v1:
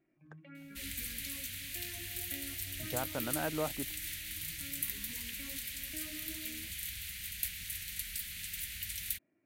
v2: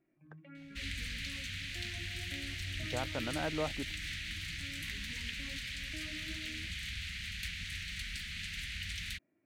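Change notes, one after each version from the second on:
second sound +7.0 dB; master: add distance through air 140 m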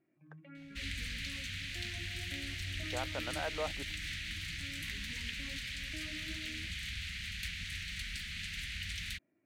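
speech: add high-pass 430 Hz 12 dB/octave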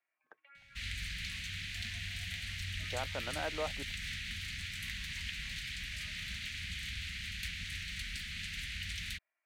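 first sound: add high-pass 870 Hz 24 dB/octave

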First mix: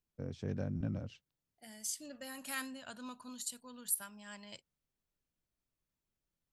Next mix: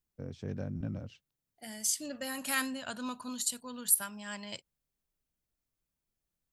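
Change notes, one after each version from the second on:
second voice +8.5 dB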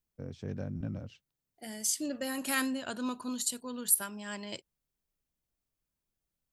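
second voice: add peaking EQ 360 Hz +10 dB 0.88 oct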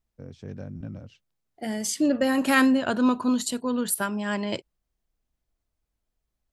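second voice: remove pre-emphasis filter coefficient 0.8

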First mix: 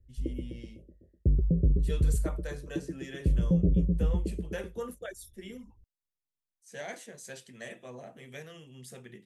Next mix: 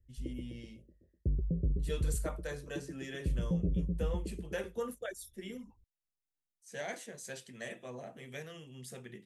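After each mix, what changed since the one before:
background -7.5 dB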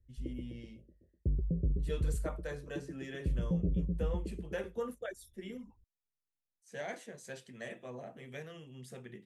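master: add treble shelf 3.7 kHz -8.5 dB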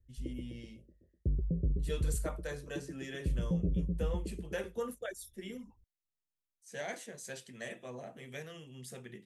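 master: add treble shelf 3.7 kHz +8.5 dB

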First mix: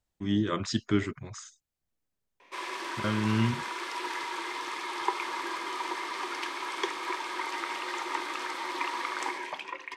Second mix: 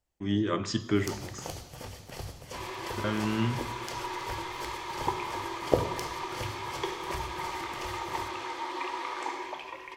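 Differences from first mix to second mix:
first sound: unmuted; second sound -6.0 dB; reverb: on, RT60 1.1 s

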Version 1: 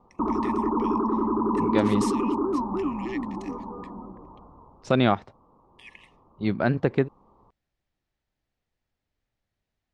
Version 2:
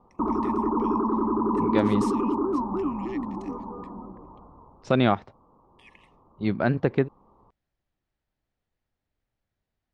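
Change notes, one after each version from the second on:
first voice -6.5 dB; second voice: add distance through air 59 m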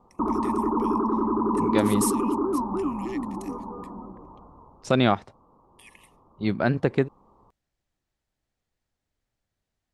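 master: remove distance through air 150 m

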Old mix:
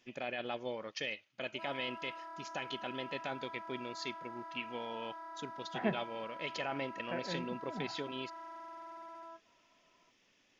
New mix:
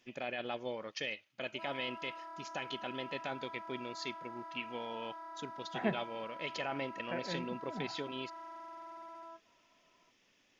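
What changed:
second voice: remove low-pass 2.8 kHz; background: add peaking EQ 1.7 kHz -3 dB 0.22 oct

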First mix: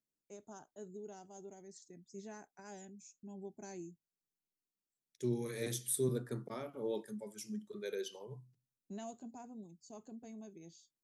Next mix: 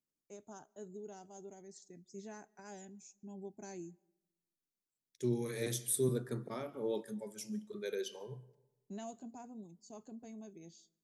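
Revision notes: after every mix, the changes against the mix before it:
reverb: on, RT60 1.0 s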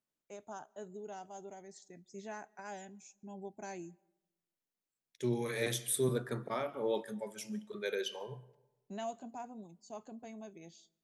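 master: add high-order bell 1.4 kHz +8 dB 3 oct

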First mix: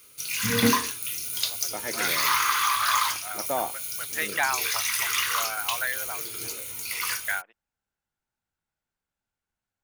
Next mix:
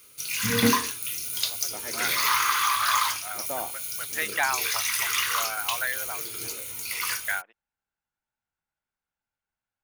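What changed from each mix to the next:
first voice -5.5 dB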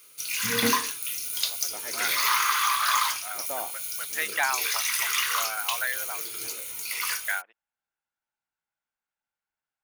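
master: add bass shelf 250 Hz -11.5 dB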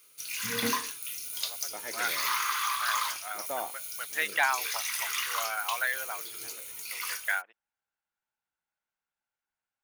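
background -6.0 dB

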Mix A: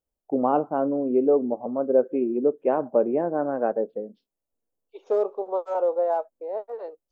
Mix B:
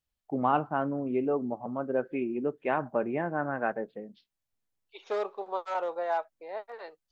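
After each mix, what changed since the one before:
master: add graphic EQ 125/250/500/2000/4000 Hz +7/-5/-11/+11/+10 dB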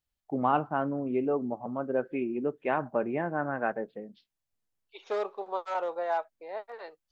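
no change

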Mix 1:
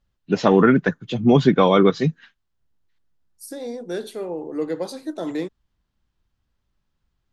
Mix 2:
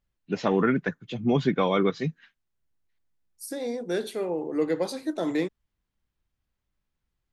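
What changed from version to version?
first voice -8.5 dB; master: add peaking EQ 2.2 kHz +5 dB 0.57 oct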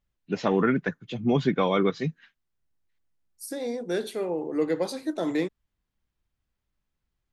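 no change

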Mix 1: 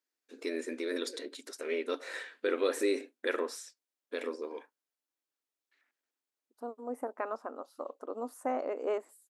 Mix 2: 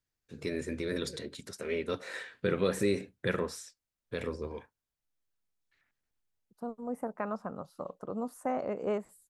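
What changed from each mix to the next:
master: remove brick-wall FIR high-pass 240 Hz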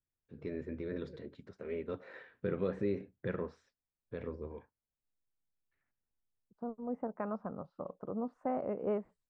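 first voice -3.5 dB; master: add tape spacing loss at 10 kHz 44 dB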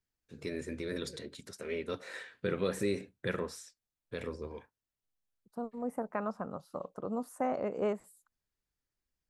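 second voice: entry -1.05 s; master: remove tape spacing loss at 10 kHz 44 dB

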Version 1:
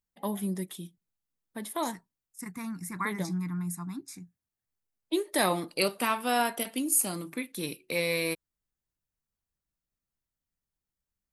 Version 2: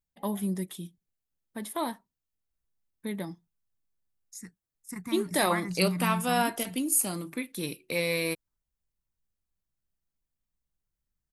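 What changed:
second voice: entry +2.50 s; master: add bass shelf 95 Hz +8.5 dB

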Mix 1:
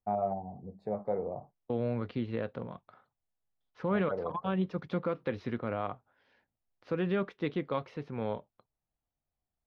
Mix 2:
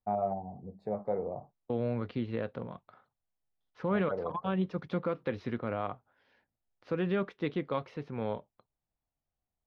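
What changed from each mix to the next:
no change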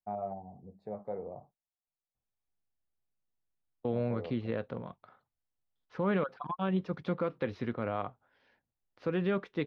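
first voice -6.0 dB; second voice: entry +2.15 s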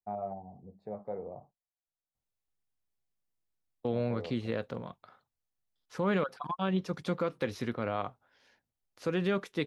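second voice: remove distance through air 280 m

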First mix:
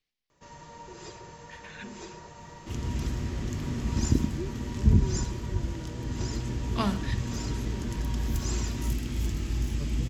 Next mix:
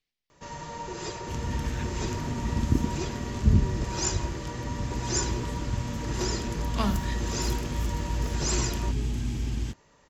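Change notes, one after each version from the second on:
first sound +8.5 dB; second sound: entry -1.40 s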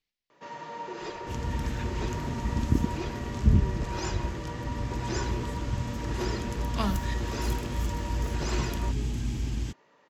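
first sound: add band-pass 260–3400 Hz; reverb: off

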